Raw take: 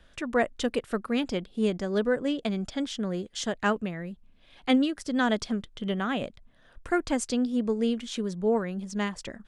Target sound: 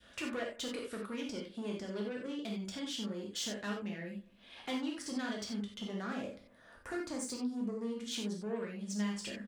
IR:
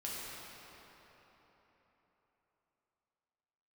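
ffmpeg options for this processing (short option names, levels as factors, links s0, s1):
-filter_complex "[0:a]asplit=2[s0][s1];[s1]adelay=83,lowpass=f=2400:p=1,volume=0.0668,asplit=2[s2][s3];[s3]adelay=83,lowpass=f=2400:p=1,volume=0.47,asplit=2[s4][s5];[s5]adelay=83,lowpass=f=2400:p=1,volume=0.47[s6];[s0][s2][s4][s6]amix=inputs=4:normalize=0,acompressor=threshold=0.0141:ratio=2.5,asoftclip=type=tanh:threshold=0.02,asettb=1/sr,asplit=3[s7][s8][s9];[s7]atrim=end=5.874[s10];[s8]atrim=start=5.87:end=8.08,asetpts=PTS-STARTPTS,afade=t=in:d=0.004:c=qsin,afade=t=out:st=2.206:d=0.004:c=qsin,equalizer=f=3100:w=2.1:g=-9[s11];[s9]atrim=start=8.076[s12];[s10][s11]acrossfade=d=0.004:c1=hsin:c2=qsin[s13];[s13][s12]acrossfade=d=0.004:c1=qsin:c2=hsin[s14];[1:a]atrim=start_sample=2205,atrim=end_sample=4410[s15];[s14][s15]afir=irnorm=-1:irlink=0,adynamicequalizer=threshold=0.00158:dfrequency=870:dqfactor=0.71:tfrequency=870:tqfactor=0.71:attack=5:release=100:ratio=0.375:range=3:mode=cutabove:tftype=bell,highpass=f=240:p=1,volume=2"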